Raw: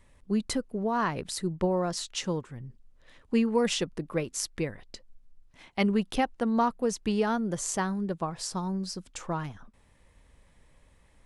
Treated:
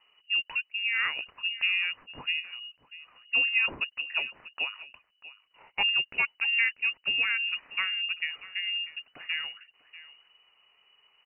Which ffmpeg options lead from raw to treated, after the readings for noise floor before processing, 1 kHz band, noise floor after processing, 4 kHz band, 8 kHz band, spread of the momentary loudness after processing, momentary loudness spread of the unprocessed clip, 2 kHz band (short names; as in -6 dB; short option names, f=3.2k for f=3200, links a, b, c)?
-62 dBFS, -11.5 dB, -73 dBFS, +9.5 dB, under -40 dB, 14 LU, 9 LU, +13.0 dB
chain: -filter_complex "[0:a]highpass=f=47:w=0.5412,highpass=f=47:w=1.3066,asplit=2[a][b];[b]adelay=641.4,volume=-16dB,highshelf=f=4k:g=-14.4[c];[a][c]amix=inputs=2:normalize=0,lowpass=f=2.6k:t=q:w=0.5098,lowpass=f=2.6k:t=q:w=0.6013,lowpass=f=2.6k:t=q:w=0.9,lowpass=f=2.6k:t=q:w=2.563,afreqshift=-3000,volume=-1dB"